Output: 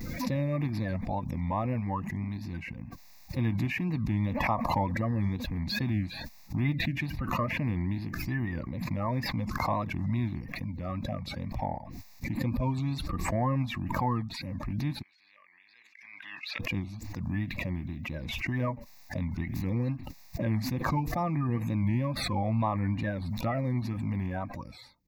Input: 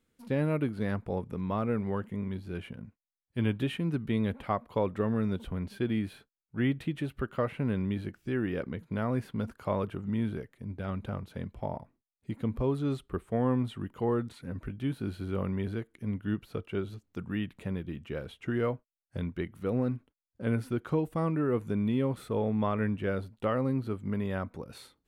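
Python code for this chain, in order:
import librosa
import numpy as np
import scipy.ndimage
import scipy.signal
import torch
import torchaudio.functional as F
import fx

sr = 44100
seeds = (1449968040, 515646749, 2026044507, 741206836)

y = fx.spec_quant(x, sr, step_db=30)
y = fx.wow_flutter(y, sr, seeds[0], rate_hz=2.1, depth_cents=120.0)
y = fx.ladder_bandpass(y, sr, hz=2700.0, resonance_pct=30, at=(15.01, 16.59), fade=0.02)
y = fx.fixed_phaser(y, sr, hz=2100.0, stages=8)
y = fx.pre_swell(y, sr, db_per_s=30.0)
y = F.gain(torch.from_numpy(y), 4.0).numpy()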